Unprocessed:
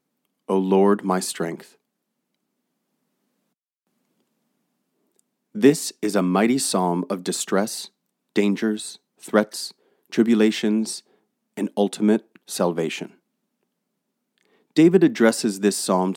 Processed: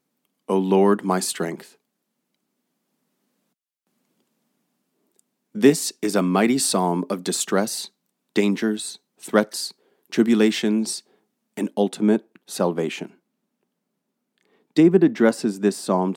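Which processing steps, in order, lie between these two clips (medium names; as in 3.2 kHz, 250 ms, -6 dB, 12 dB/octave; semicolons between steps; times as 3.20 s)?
treble shelf 2.3 kHz +2.5 dB, from 11.70 s -3 dB, from 14.80 s -8.5 dB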